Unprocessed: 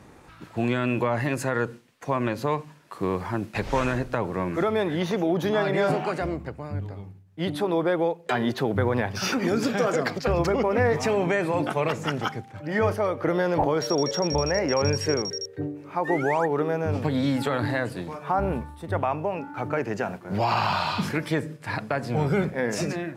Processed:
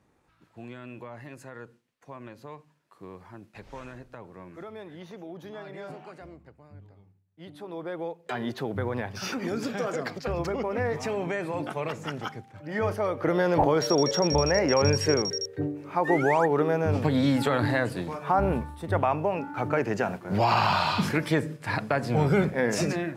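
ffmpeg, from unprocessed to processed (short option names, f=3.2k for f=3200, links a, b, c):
-af "volume=1dB,afade=t=in:st=7.53:d=0.93:silence=0.281838,afade=t=in:st=12.65:d=0.96:silence=0.421697"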